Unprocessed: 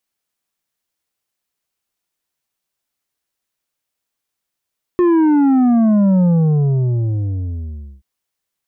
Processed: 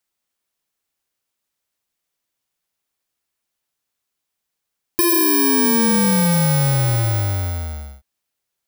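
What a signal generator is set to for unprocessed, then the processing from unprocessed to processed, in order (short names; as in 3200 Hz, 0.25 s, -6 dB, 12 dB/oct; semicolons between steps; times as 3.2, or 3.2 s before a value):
sub drop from 360 Hz, over 3.03 s, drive 7 dB, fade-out 1.80 s, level -10.5 dB
FFT order left unsorted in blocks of 64 samples; compressor, threshold -15 dBFS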